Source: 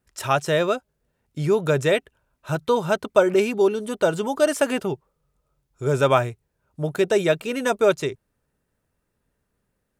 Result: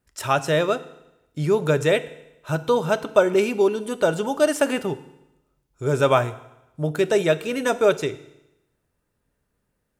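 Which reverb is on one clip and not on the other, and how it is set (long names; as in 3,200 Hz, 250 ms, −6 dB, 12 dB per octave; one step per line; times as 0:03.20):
feedback delay network reverb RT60 0.91 s, low-frequency decay 1.05×, high-frequency decay 1×, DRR 12.5 dB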